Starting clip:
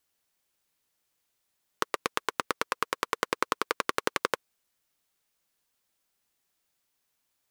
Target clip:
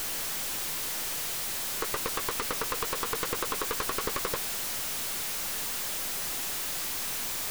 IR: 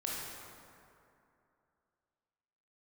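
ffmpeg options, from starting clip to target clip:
-af "aeval=exprs='val(0)+0.5*0.0562*sgn(val(0))':channel_layout=same,aeval=exprs='(tanh(12.6*val(0)+0.45)-tanh(0.45))/12.6':channel_layout=same"

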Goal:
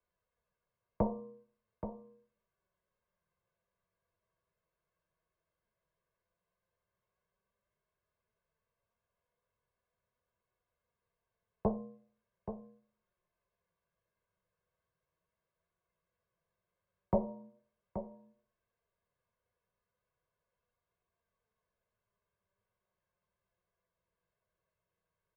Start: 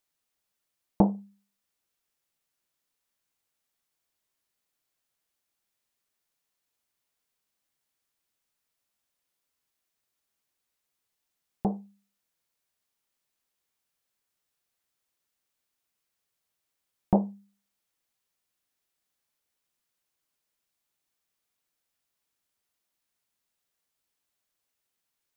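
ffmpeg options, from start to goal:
ffmpeg -i in.wav -filter_complex "[0:a]lowpass=1300,equalizer=frequency=85:width=0.34:gain=5.5,aecho=1:1:1.9:0.96,bandreject=frequency=115.4:width_type=h:width=4,bandreject=frequency=230.8:width_type=h:width=4,bandreject=frequency=346.2:width_type=h:width=4,bandreject=frequency=461.6:width_type=h:width=4,bandreject=frequency=577:width_type=h:width=4,bandreject=frequency=692.4:width_type=h:width=4,bandreject=frequency=807.8:width_type=h:width=4,bandreject=frequency=923.2:width_type=h:width=4,bandreject=frequency=1038.6:width_type=h:width=4,bandreject=frequency=1154:width_type=h:width=4,acrossover=split=510[link_01][link_02];[link_01]acompressor=threshold=-33dB:ratio=6[link_03];[link_02]alimiter=level_in=0.5dB:limit=-24dB:level=0:latency=1:release=168,volume=-0.5dB[link_04];[link_03][link_04]amix=inputs=2:normalize=0,flanger=delay=4.1:depth=2.3:regen=67:speed=0.1:shape=sinusoidal,afreqshift=14,flanger=delay=2.7:depth=7.8:regen=77:speed=0.38:shape=sinusoidal,aecho=1:1:827:0.316,volume=9.5dB" out.wav

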